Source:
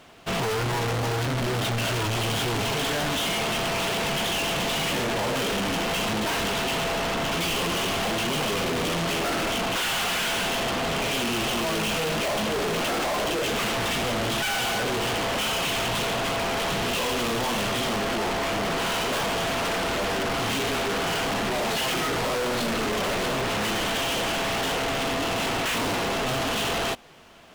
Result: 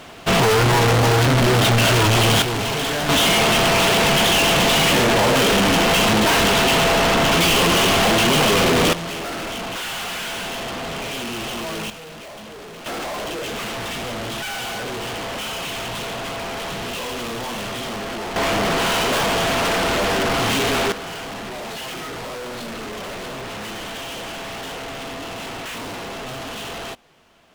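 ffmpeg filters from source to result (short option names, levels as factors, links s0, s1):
-af "asetnsamples=n=441:p=0,asendcmd='2.42 volume volume 3.5dB;3.09 volume volume 10dB;8.93 volume volume -2dB;11.9 volume volume -11.5dB;12.86 volume volume -2dB;18.36 volume volume 6.5dB;20.92 volume volume -5dB',volume=3.35"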